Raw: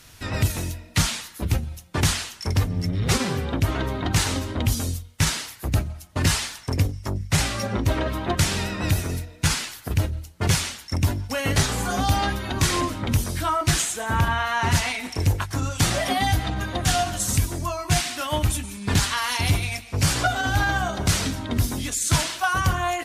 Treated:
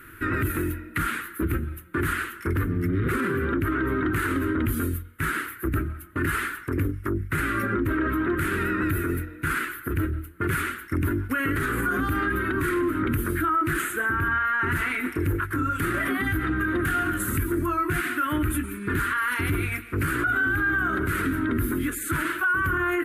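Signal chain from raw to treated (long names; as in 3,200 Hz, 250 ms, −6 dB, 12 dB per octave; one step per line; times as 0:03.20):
drawn EQ curve 210 Hz 0 dB, 340 Hz +15 dB, 530 Hz −5 dB, 790 Hz −14 dB, 1,400 Hz +15 dB, 5,600 Hz −24 dB, 12,000 Hz +4 dB
brickwall limiter −17 dBFS, peak gain reduction 16 dB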